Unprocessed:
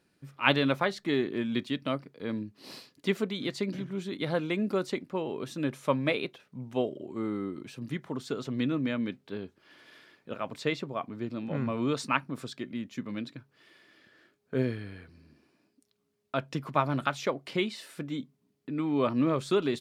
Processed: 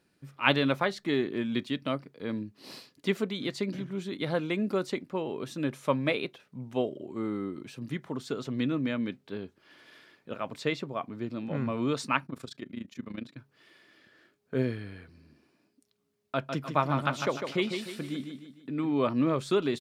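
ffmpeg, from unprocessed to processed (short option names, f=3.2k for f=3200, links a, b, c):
-filter_complex "[0:a]asettb=1/sr,asplit=3[a][b][c];[a]atrim=end=12.264[d];[b]atrim=start=12.26:end=13.37,asetpts=PTS-STARTPTS,afade=t=in:d=0.004:c=qsin,afade=t=out:st=1.106:d=0.004:c=qsin,tremolo=f=27:d=0.857[e];[c]atrim=start=13.366[f];[d][e]acrossfade=d=0.004:c1=hsin:c2=qsin[g];[g][f]acrossfade=d=0.004:c1=qsin:c2=hsin,asplit=3[h][i][j];[h]afade=t=out:st=16.45:d=0.02[k];[i]aecho=1:1:151|302|453|604|755:0.473|0.203|0.0875|0.0376|0.0162,afade=t=in:st=16.45:d=0.02,afade=t=out:st=18.9:d=0.02[l];[j]afade=t=in:st=18.9:d=0.02[m];[k][l][m]amix=inputs=3:normalize=0"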